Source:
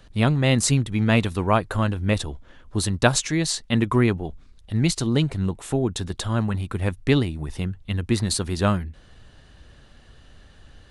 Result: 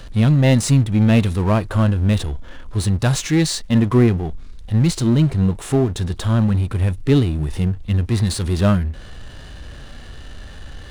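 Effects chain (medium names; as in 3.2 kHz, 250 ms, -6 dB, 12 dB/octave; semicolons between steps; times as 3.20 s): power-law waveshaper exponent 0.7; harmonic-percussive split percussive -11 dB; trim +3 dB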